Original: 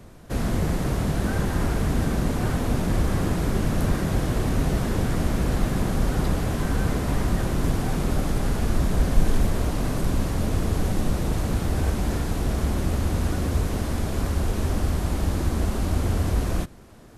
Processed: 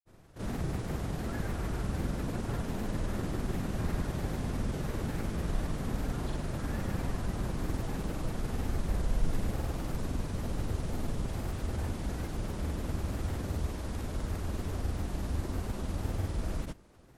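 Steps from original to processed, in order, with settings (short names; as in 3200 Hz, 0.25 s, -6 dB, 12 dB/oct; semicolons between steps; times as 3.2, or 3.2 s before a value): grains, pitch spread up and down by 3 st; gain -9 dB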